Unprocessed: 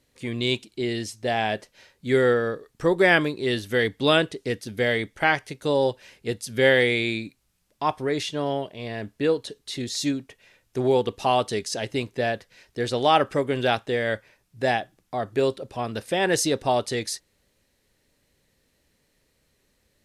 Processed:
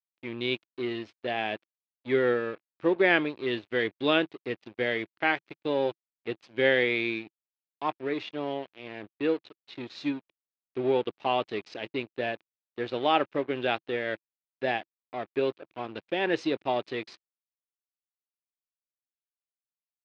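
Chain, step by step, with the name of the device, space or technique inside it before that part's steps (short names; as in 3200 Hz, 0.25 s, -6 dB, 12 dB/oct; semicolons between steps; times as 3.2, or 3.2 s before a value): blown loudspeaker (crossover distortion -36 dBFS; speaker cabinet 130–3800 Hz, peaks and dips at 160 Hz -4 dB, 330 Hz +6 dB, 2500 Hz +5 dB); gain -5 dB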